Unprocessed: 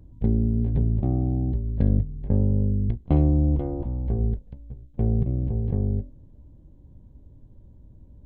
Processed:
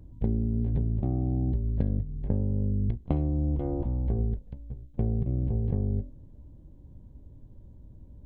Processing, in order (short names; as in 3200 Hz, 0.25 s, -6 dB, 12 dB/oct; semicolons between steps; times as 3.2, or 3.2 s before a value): compressor 10:1, threshold -22 dBFS, peak gain reduction 9 dB